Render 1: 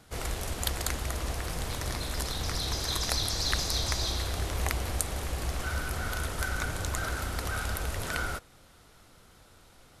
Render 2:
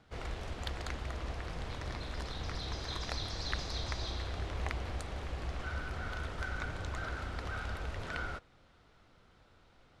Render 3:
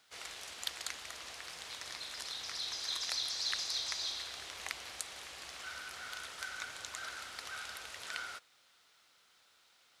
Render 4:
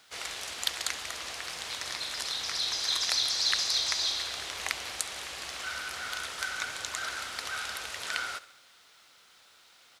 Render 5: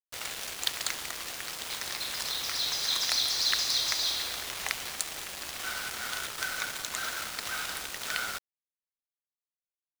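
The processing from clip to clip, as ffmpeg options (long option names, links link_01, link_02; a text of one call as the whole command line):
ffmpeg -i in.wav -af "lowpass=3700,volume=-6dB" out.wav
ffmpeg -i in.wav -af "aderivative,volume=11dB" out.wav
ffmpeg -i in.wav -af "aecho=1:1:69|138|207|276|345:0.126|0.0743|0.0438|0.0259|0.0153,volume=8.5dB" out.wav
ffmpeg -i in.wav -af "acrusher=bits=5:mix=0:aa=0.000001" out.wav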